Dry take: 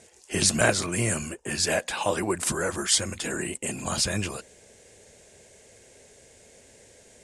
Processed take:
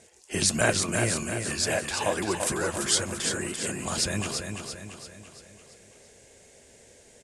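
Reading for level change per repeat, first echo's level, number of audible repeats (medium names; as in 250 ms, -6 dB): -6.0 dB, -6.0 dB, 5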